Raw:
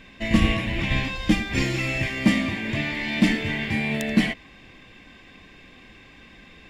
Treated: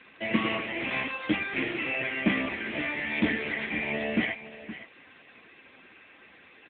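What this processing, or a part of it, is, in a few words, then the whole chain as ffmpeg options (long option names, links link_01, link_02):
satellite phone: -af "highpass=350,lowpass=3200,aecho=1:1:518:0.2,volume=1.5dB" -ar 8000 -c:a libopencore_amrnb -b:a 6700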